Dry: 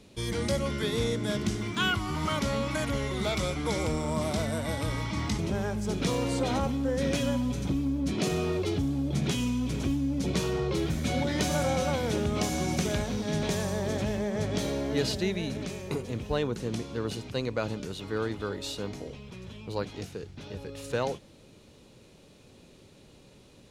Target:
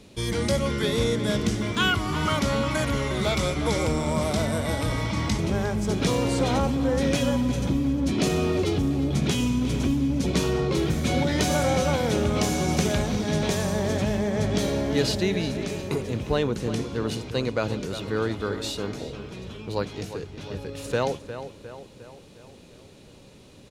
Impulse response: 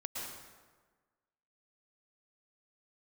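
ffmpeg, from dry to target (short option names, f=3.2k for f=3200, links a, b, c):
-filter_complex "[0:a]asplit=2[a][b];[b]adelay=356,lowpass=f=3.6k:p=1,volume=-11dB,asplit=2[c][d];[d]adelay=356,lowpass=f=3.6k:p=1,volume=0.55,asplit=2[e][f];[f]adelay=356,lowpass=f=3.6k:p=1,volume=0.55,asplit=2[g][h];[h]adelay=356,lowpass=f=3.6k:p=1,volume=0.55,asplit=2[i][j];[j]adelay=356,lowpass=f=3.6k:p=1,volume=0.55,asplit=2[k][l];[l]adelay=356,lowpass=f=3.6k:p=1,volume=0.55[m];[a][c][e][g][i][k][m]amix=inputs=7:normalize=0,volume=4.5dB"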